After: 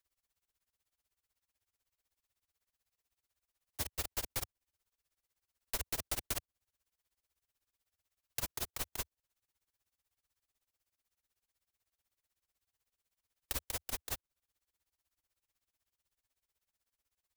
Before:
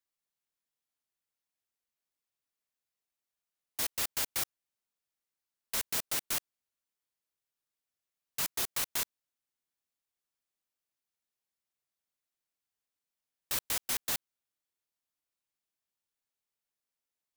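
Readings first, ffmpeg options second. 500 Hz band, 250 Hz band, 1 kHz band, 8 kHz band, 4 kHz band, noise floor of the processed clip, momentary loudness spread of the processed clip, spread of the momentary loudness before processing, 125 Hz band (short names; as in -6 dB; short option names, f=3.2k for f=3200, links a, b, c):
-1.5 dB, -2.5 dB, -4.5 dB, -7.0 dB, -7.0 dB, under -85 dBFS, 6 LU, 5 LU, +4.5 dB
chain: -filter_complex "[0:a]lowshelf=f=110:t=q:w=1.5:g=10.5,acrossover=split=260|810[a][b][c];[a]acompressor=threshold=-49dB:ratio=4[d];[b]acompressor=threshold=-52dB:ratio=4[e];[c]acompressor=threshold=-43dB:ratio=4[f];[d][e][f]amix=inputs=3:normalize=0,tremolo=f=16:d=0.97,volume=8dB"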